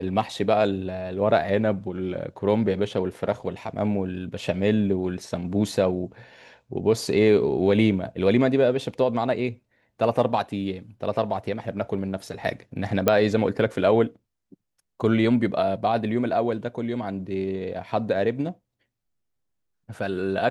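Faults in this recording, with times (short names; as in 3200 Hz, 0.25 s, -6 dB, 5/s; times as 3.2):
13.08 pop -5 dBFS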